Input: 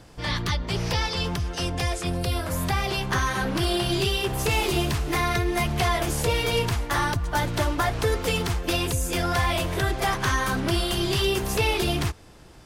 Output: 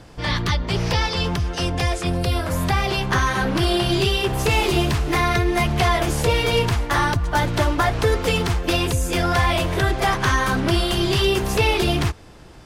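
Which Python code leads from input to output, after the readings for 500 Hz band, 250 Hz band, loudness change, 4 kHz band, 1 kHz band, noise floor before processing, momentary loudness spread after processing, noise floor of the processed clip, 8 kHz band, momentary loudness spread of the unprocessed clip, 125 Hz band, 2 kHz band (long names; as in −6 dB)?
+5.0 dB, +5.0 dB, +4.5 dB, +3.5 dB, +5.0 dB, −47 dBFS, 4 LU, −42 dBFS, +1.0 dB, 4 LU, +5.0 dB, +4.5 dB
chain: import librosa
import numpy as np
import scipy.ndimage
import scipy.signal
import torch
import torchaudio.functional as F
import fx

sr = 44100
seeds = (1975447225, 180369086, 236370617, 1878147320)

y = fx.high_shelf(x, sr, hz=7000.0, db=-7.0)
y = y * 10.0 ** (5.0 / 20.0)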